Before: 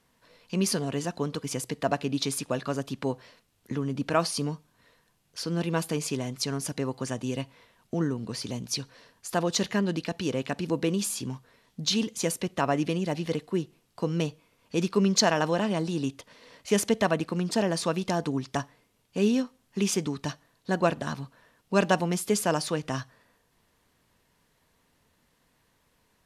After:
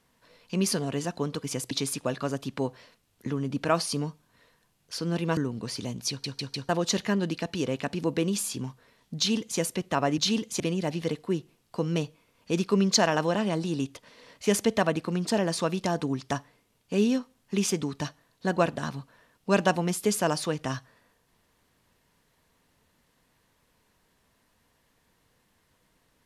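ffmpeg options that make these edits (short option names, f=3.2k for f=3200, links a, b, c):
-filter_complex "[0:a]asplit=9[a][b][c][d][e][f][g][h][i];[a]atrim=end=1.712[j];[b]atrim=start=2.158:end=5.822[k];[c]atrim=start=8.028:end=8.902[l];[d]atrim=start=8.748:end=8.902[m];[e]atrim=start=8.748:end=8.902[n];[f]atrim=start=8.748:end=8.902[o];[g]atrim=start=9.348:end=12.842[p];[h]atrim=start=11.828:end=12.252[q];[i]atrim=start=12.838[r];[j][k]acrossfade=d=0.004:c1=hsin:c2=hsin[s];[s][l]acrossfade=d=0.004:c1=hsin:c2=hsin[t];[t][m]acrossfade=d=0.004:c1=hsin:c2=hsin[u];[u][n]acrossfade=d=0.004:c1=hsin:c2=hsin[v];[v][o]acrossfade=d=0.004:c1=hsin:c2=hsin[w];[w][p]acrossfade=d=0.004:c1=hsin:c2=hsin[x];[x][q]acrossfade=d=0.004:c1=hsin:c2=hsin[y];[y][r]acrossfade=d=0.004:c1=hsin:c2=hsin"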